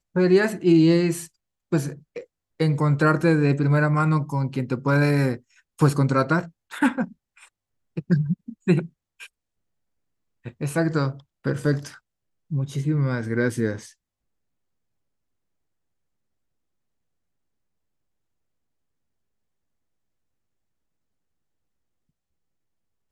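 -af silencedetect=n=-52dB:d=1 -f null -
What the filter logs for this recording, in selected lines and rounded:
silence_start: 9.27
silence_end: 10.44 | silence_duration: 1.17
silence_start: 13.93
silence_end: 23.12 | silence_duration: 9.19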